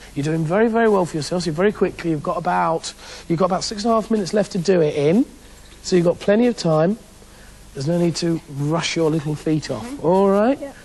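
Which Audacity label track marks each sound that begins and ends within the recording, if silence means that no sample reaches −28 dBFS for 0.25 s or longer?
5.850000	6.940000	sound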